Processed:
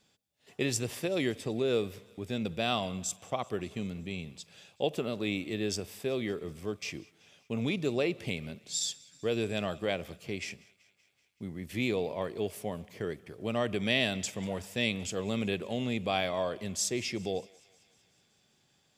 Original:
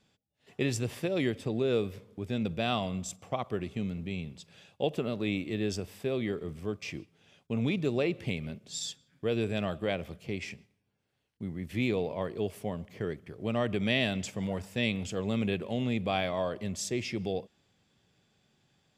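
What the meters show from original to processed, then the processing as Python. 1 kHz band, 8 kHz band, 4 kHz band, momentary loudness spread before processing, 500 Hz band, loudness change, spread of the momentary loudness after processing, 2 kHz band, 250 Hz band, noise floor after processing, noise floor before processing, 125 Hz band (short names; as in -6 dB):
0.0 dB, +5.5 dB, +2.5 dB, 9 LU, -0.5 dB, -0.5 dB, 9 LU, +0.5 dB, -2.0 dB, -70 dBFS, -77 dBFS, -3.5 dB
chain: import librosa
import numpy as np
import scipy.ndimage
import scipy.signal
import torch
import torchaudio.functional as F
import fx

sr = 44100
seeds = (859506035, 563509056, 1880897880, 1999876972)

y = fx.bass_treble(x, sr, bass_db=-4, treble_db=6)
y = fx.echo_thinned(y, sr, ms=190, feedback_pct=68, hz=640.0, wet_db=-23.5)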